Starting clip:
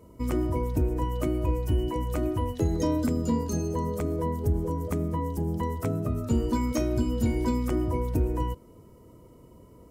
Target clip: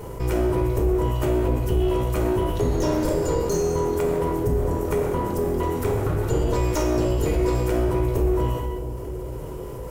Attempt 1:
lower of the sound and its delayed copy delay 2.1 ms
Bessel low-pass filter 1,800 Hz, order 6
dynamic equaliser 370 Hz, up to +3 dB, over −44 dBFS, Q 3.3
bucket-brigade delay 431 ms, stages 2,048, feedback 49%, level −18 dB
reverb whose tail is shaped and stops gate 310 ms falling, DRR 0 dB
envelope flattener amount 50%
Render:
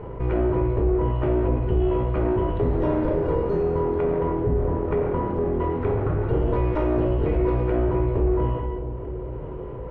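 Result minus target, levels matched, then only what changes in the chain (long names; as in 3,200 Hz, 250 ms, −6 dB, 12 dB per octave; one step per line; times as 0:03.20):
2,000 Hz band −3.0 dB
remove: Bessel low-pass filter 1,800 Hz, order 6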